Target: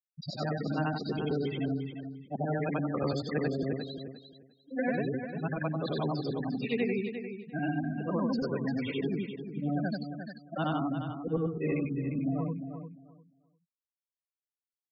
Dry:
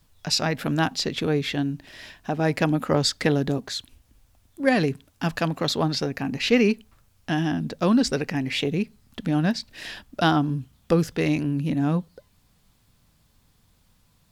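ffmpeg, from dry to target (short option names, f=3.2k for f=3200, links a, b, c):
-filter_complex "[0:a]afftfilt=real='re':imag='-im':win_size=8192:overlap=0.75,afftfilt=real='re*gte(hypot(re,im),0.0501)':imag='im*gte(hypot(re,im),0.0501)':win_size=1024:overlap=0.75,acrossover=split=380|2200[a][b][c];[a]acompressor=threshold=-32dB:ratio=4[d];[b]acompressor=threshold=-32dB:ratio=4[e];[c]acompressor=threshold=-48dB:ratio=4[f];[d][e][f]amix=inputs=3:normalize=0,aecho=1:1:336|672|1008:0.355|0.0674|0.0128,asetrate=42336,aresample=44100"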